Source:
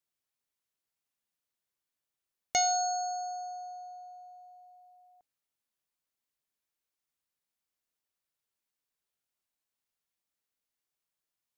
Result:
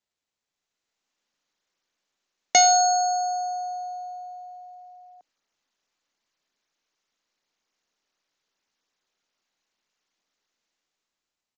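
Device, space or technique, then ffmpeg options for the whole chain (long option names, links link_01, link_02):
Bluetooth headset: -af "highpass=frequency=200:width=0.5412,highpass=frequency=200:width=1.3066,dynaudnorm=framelen=270:gausssize=7:maxgain=12dB,aresample=16000,aresample=44100" -ar 16000 -c:a sbc -b:a 64k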